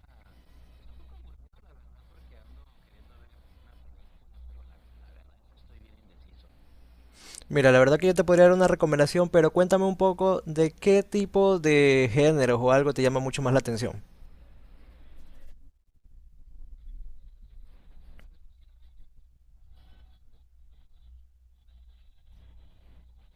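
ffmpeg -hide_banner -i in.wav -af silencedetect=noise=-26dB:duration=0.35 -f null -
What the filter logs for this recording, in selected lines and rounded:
silence_start: 0.00
silence_end: 7.35 | silence_duration: 7.35
silence_start: 13.90
silence_end: 23.35 | silence_duration: 9.45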